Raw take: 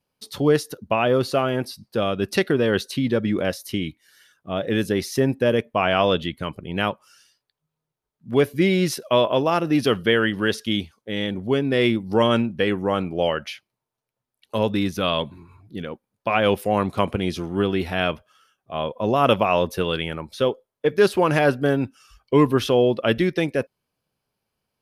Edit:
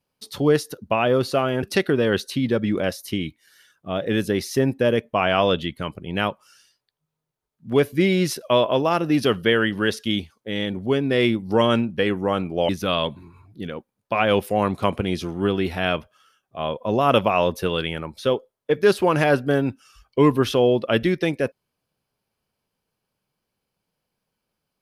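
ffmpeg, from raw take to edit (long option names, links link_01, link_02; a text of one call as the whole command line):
ffmpeg -i in.wav -filter_complex "[0:a]asplit=3[link_01][link_02][link_03];[link_01]atrim=end=1.632[link_04];[link_02]atrim=start=2.238:end=13.302[link_05];[link_03]atrim=start=14.838[link_06];[link_04][link_05]acrossfade=duration=0.004:curve1=hsin:curve2=hsin[link_07];[link_07][link_06]acrossfade=duration=0.004:curve1=hsin:curve2=hsin" out.wav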